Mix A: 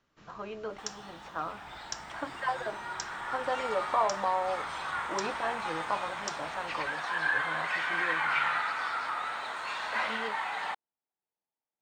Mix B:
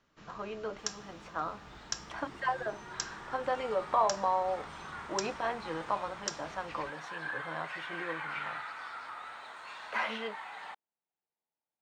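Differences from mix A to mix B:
second sound -10.0 dB; reverb: on

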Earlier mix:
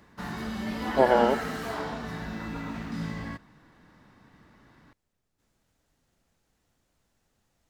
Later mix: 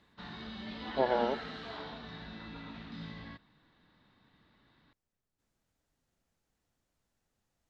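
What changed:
speech -8.5 dB; background: add ladder low-pass 4200 Hz, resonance 65%

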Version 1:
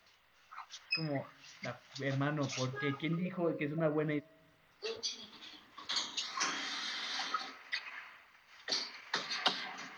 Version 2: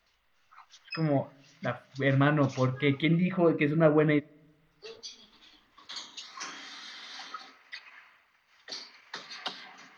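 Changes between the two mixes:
speech +10.5 dB; background -5.0 dB

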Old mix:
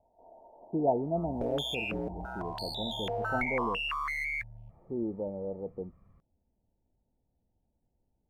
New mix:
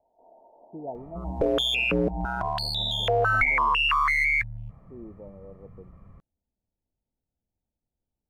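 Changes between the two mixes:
speech -9.5 dB; second sound +11.5 dB; master: add high shelf 7000 Hz -7 dB

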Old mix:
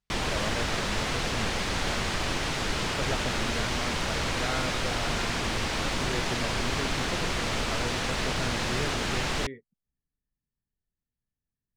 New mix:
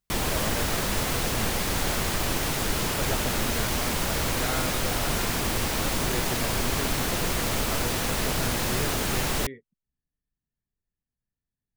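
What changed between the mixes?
background: add tilt shelf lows +3 dB, about 1200 Hz; master: remove air absorption 100 m

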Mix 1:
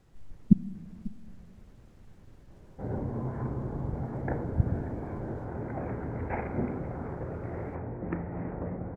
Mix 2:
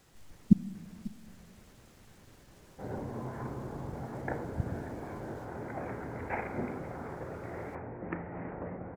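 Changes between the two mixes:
speech +4.0 dB; master: add tilt +2.5 dB/oct

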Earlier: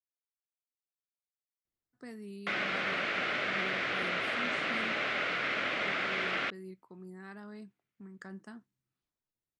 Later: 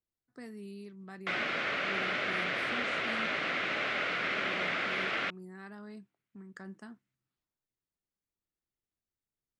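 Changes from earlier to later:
speech: entry -1.65 s; background: entry -1.20 s

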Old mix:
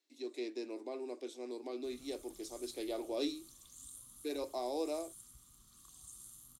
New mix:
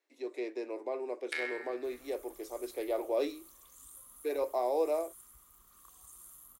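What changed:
first sound: unmuted; second sound: remove LPF 9700 Hz 12 dB/oct; master: add graphic EQ 125/250/500/1000/2000/4000/8000 Hz -9/-5/+9/+6/+7/-7/-4 dB

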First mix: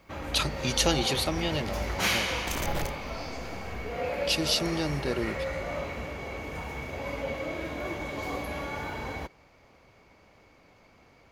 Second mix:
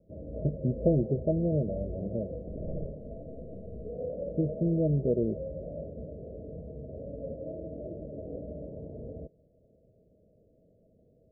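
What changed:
speech +7.0 dB; master: add rippled Chebyshev low-pass 660 Hz, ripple 6 dB

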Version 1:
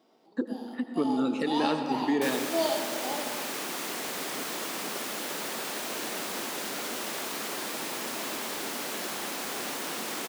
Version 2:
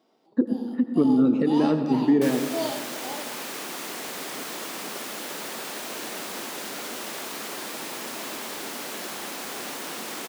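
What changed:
speech: add tilt -4.5 dB/oct; first sound: send -8.0 dB

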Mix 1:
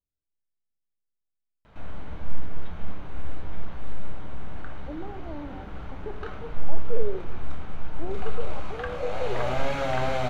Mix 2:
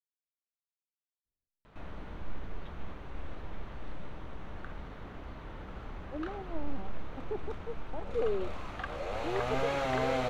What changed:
speech: entry +1.25 s; reverb: off

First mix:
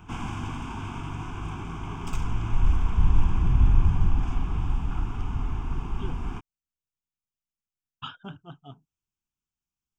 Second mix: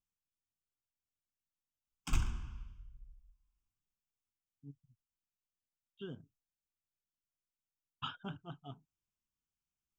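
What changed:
speech -3.5 dB; first sound: muted

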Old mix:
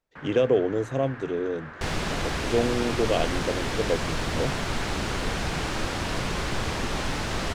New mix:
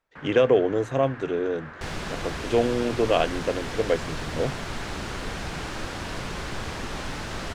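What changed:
speech: add bell 1400 Hz +8.5 dB 2.1 oct; second sound -4.5 dB

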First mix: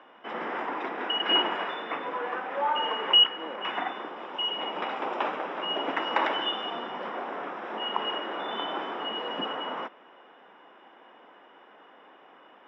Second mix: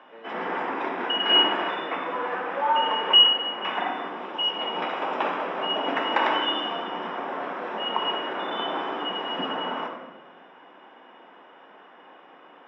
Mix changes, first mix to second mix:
speech: entry -1.60 s; reverb: on, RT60 1.2 s

